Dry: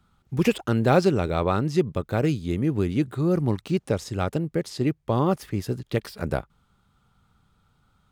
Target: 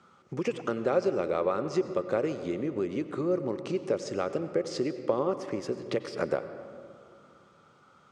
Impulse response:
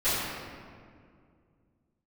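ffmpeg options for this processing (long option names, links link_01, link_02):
-filter_complex "[0:a]acompressor=threshold=-35dB:ratio=8,highpass=220,equalizer=frequency=380:width_type=q:width=4:gain=6,equalizer=frequency=540:width_type=q:width=4:gain=10,equalizer=frequency=1200:width_type=q:width=4:gain=6,equalizer=frequency=2100:width_type=q:width=4:gain=3,equalizer=frequency=3800:width_type=q:width=4:gain=-5,equalizer=frequency=5900:width_type=q:width=4:gain=3,lowpass=frequency=7700:width=0.5412,lowpass=frequency=7700:width=1.3066,asplit=2[link_01][link_02];[1:a]atrim=start_sample=2205,adelay=86[link_03];[link_02][link_03]afir=irnorm=-1:irlink=0,volume=-24dB[link_04];[link_01][link_04]amix=inputs=2:normalize=0,volume=6dB"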